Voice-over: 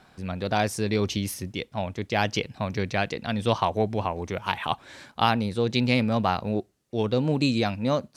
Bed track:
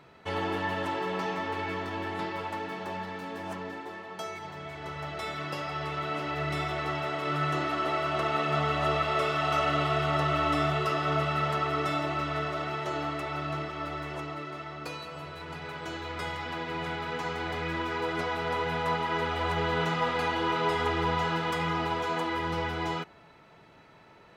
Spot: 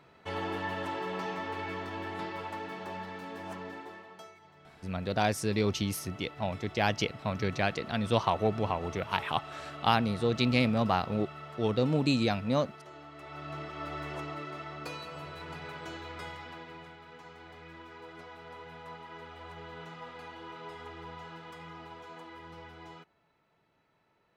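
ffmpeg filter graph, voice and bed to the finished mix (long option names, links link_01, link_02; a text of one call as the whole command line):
ffmpeg -i stem1.wav -i stem2.wav -filter_complex "[0:a]adelay=4650,volume=-3.5dB[link_01];[1:a]volume=11dB,afade=type=out:start_time=3.79:duration=0.56:silence=0.223872,afade=type=in:start_time=13.11:duration=0.94:silence=0.177828,afade=type=out:start_time=15.43:duration=1.51:silence=0.177828[link_02];[link_01][link_02]amix=inputs=2:normalize=0" out.wav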